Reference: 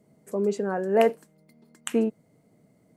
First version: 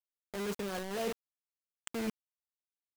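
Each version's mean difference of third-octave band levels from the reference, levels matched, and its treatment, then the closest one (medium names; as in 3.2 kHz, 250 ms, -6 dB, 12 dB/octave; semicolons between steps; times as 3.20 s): 13.5 dB: dynamic bell 150 Hz, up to +6 dB, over -41 dBFS, Q 1.4; reverse; compression 8:1, threshold -32 dBFS, peak gain reduction 17 dB; reverse; word length cut 6-bit, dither none; trim -2.5 dB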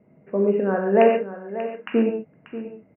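6.5 dB: Chebyshev low-pass 2.8 kHz, order 8; on a send: delay 587 ms -13 dB; on the sum: gated-style reverb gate 160 ms flat, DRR 1.5 dB; trim +3.5 dB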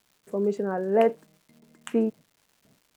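2.0 dB: gate with hold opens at -49 dBFS; treble shelf 2.8 kHz -11 dB; crackle 380 per s -50 dBFS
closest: third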